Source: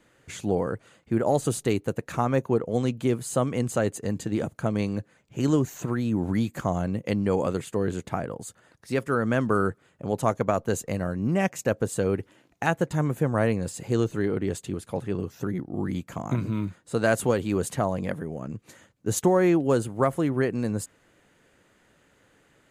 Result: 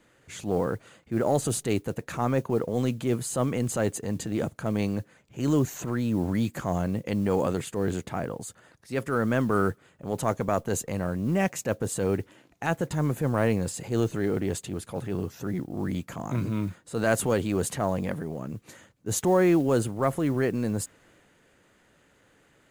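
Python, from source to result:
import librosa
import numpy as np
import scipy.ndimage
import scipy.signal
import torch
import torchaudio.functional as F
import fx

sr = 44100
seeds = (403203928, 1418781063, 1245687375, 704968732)

y = fx.transient(x, sr, attack_db=-6, sustain_db=3)
y = fx.mod_noise(y, sr, seeds[0], snr_db=31)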